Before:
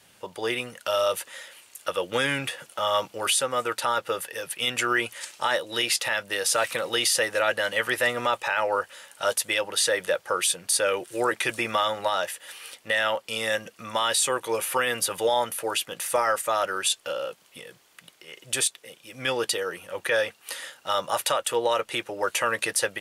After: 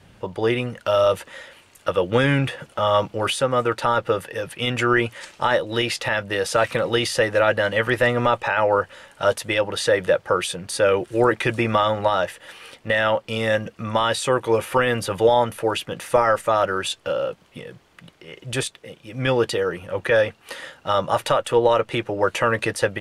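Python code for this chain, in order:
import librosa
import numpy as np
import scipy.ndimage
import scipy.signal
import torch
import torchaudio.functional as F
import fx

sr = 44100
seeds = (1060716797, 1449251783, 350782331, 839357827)

y = fx.riaa(x, sr, side='playback')
y = F.gain(torch.from_numpy(y), 5.0).numpy()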